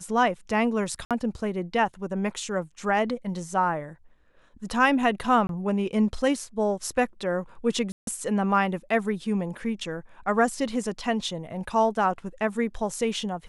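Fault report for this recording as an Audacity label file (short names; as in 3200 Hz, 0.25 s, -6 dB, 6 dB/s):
1.050000	1.110000	gap 57 ms
5.470000	5.490000	gap 22 ms
7.920000	8.070000	gap 0.152 s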